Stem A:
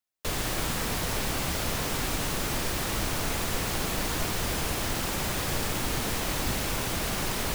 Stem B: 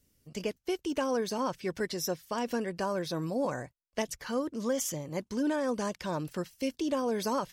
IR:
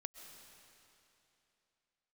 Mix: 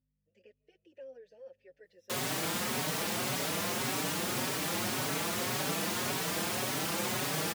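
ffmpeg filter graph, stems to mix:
-filter_complex "[0:a]highpass=f=120:w=0.5412,highpass=f=120:w=1.3066,adelay=1850,volume=0.5dB[a];[1:a]asplit=3[b][c][d];[b]bandpass=f=530:t=q:w=8,volume=0dB[e];[c]bandpass=f=1.84k:t=q:w=8,volume=-6dB[f];[d]bandpass=f=2.48k:t=q:w=8,volume=-9dB[g];[e][f][g]amix=inputs=3:normalize=0,aeval=exprs='val(0)+0.000708*(sin(2*PI*50*n/s)+sin(2*PI*2*50*n/s)/2+sin(2*PI*3*50*n/s)/3+sin(2*PI*4*50*n/s)/4+sin(2*PI*5*50*n/s)/5)':c=same,volume=-11dB,asplit=2[h][i];[i]volume=-16.5dB[j];[2:a]atrim=start_sample=2205[k];[j][k]afir=irnorm=-1:irlink=0[l];[a][h][l]amix=inputs=3:normalize=0,highpass=78,asplit=2[m][n];[n]adelay=4.9,afreqshift=1.8[o];[m][o]amix=inputs=2:normalize=1"

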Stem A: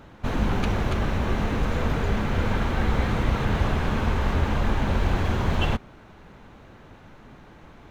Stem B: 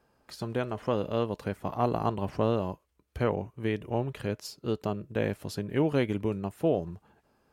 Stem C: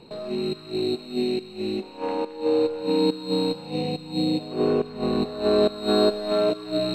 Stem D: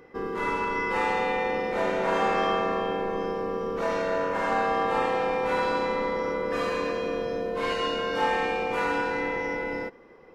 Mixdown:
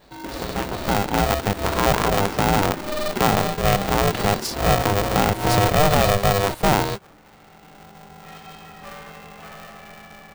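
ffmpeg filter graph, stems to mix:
-filter_complex "[0:a]volume=-4dB[a];[1:a]highpass=53,dynaudnorm=f=600:g=5:m=12.5dB,volume=2.5dB,asplit=2[b][c];[2:a]asplit=2[d][e];[e]adelay=9,afreqshift=-0.42[f];[d][f]amix=inputs=2:normalize=1,volume=-2.5dB[g];[3:a]adelay=650,volume=-9.5dB[h];[c]apad=whole_len=485088[i];[h][i]sidechaincompress=threshold=-28dB:ratio=8:attack=8.1:release=953[j];[a][j]amix=inputs=2:normalize=0,flanger=delay=6.4:depth=9.1:regen=-45:speed=0.78:shape=triangular,alimiter=level_in=0.5dB:limit=-24dB:level=0:latency=1:release=220,volume=-0.5dB,volume=0dB[k];[b][g]amix=inputs=2:normalize=0,adynamicequalizer=threshold=0.0631:dfrequency=410:dqfactor=0.75:tfrequency=410:tqfactor=0.75:attack=5:release=100:ratio=0.375:range=3:mode=boostabove:tftype=bell,alimiter=limit=-8dB:level=0:latency=1:release=39,volume=0dB[l];[k][l]amix=inputs=2:normalize=0,aeval=exprs='val(0)*sgn(sin(2*PI*300*n/s))':c=same"

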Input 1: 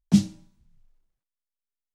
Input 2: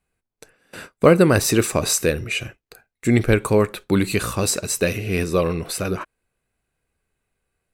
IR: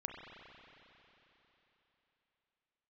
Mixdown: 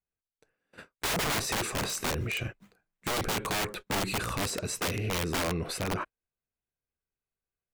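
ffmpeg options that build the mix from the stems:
-filter_complex "[0:a]highshelf=f=5k:t=q:w=1.5:g=12,acrusher=samples=12:mix=1:aa=0.000001:lfo=1:lforange=7.2:lforate=3.6,adelay=1650,volume=-13.5dB,asplit=2[a][b];[b]volume=-19dB[c];[1:a]lowpass=f=3k:p=1,agate=range=-18dB:threshold=-35dB:ratio=16:detection=peak,volume=-1dB[d];[c]aecho=0:1:417|834|1251|1668|2085:1|0.38|0.144|0.0549|0.0209[e];[a][d][e]amix=inputs=3:normalize=0,aeval=exprs='(mod(7.5*val(0)+1,2)-1)/7.5':c=same,alimiter=level_in=0.5dB:limit=-24dB:level=0:latency=1:release=16,volume=-0.5dB"

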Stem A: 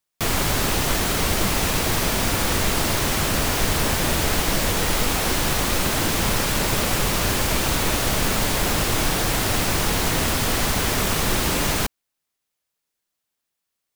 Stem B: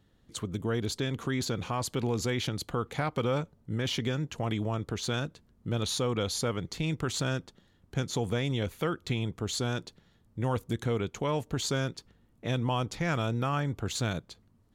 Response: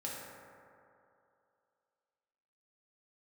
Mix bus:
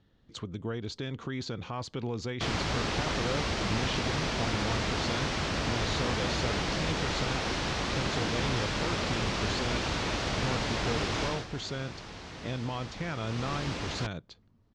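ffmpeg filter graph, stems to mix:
-filter_complex "[0:a]highpass=41,adelay=2200,afade=t=out:st=11.24:d=0.23:silence=0.223872,afade=t=in:st=13.2:d=0.33:silence=0.398107[a];[1:a]alimiter=level_in=1.5dB:limit=-24dB:level=0:latency=1:release=388,volume=-1.5dB,volume=-0.5dB[b];[a][b]amix=inputs=2:normalize=0,lowpass=f=5.7k:w=0.5412,lowpass=f=5.7k:w=1.3066"

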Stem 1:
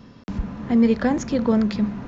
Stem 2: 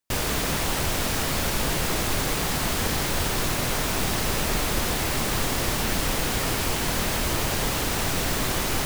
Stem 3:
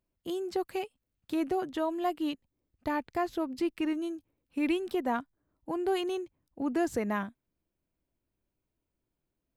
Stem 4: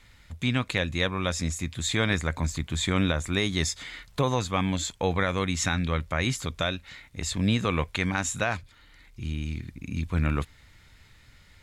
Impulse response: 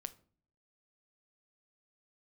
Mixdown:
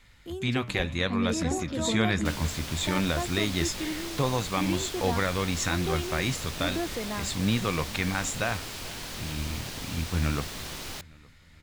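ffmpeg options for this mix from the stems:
-filter_complex "[0:a]adelay=400,volume=-12dB[a];[1:a]equalizer=f=4.1k:t=o:w=1.8:g=7,adelay=2150,volume=-15dB[b];[2:a]volume=-3.5dB[c];[3:a]flanger=delay=5.1:depth=7.5:regen=-79:speed=0.66:shape=sinusoidal,volume=2.5dB,asplit=2[d][e];[e]volume=-20dB,aecho=0:1:433|866|1299|1732|2165|2598|3031:1|0.48|0.23|0.111|0.0531|0.0255|0.0122[f];[a][b][c][d][f]amix=inputs=5:normalize=0"

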